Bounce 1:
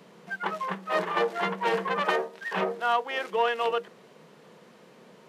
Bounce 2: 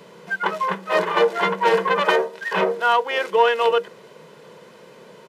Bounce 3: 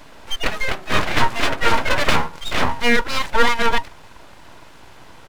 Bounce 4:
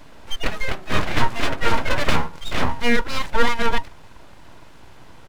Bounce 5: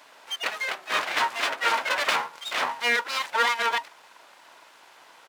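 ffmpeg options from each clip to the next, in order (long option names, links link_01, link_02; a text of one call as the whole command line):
ffmpeg -i in.wav -af "aecho=1:1:2:0.42,volume=7dB" out.wav
ffmpeg -i in.wav -af "aeval=exprs='abs(val(0))':channel_layout=same,volume=4dB" out.wav
ffmpeg -i in.wav -af "lowshelf=frequency=340:gain=6,volume=-4.5dB" out.wav
ffmpeg -i in.wav -af "highpass=730" out.wav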